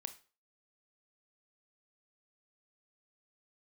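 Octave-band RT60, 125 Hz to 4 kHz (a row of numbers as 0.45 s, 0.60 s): 0.35 s, 0.35 s, 0.40 s, 0.40 s, 0.35 s, 0.35 s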